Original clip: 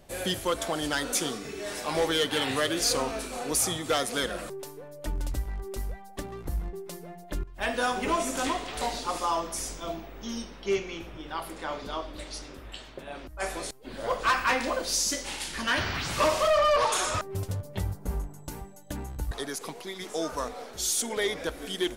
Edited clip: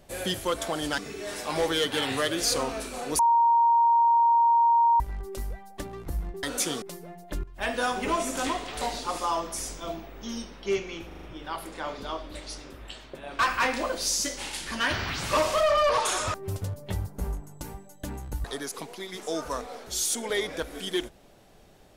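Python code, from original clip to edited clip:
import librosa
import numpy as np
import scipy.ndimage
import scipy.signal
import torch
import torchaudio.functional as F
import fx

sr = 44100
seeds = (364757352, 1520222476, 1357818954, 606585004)

y = fx.edit(x, sr, fx.move(start_s=0.98, length_s=0.39, to_s=6.82),
    fx.bleep(start_s=3.58, length_s=1.81, hz=933.0, db=-17.0),
    fx.stutter(start_s=11.07, slice_s=0.04, count=5),
    fx.cut(start_s=13.23, length_s=1.03), tone=tone)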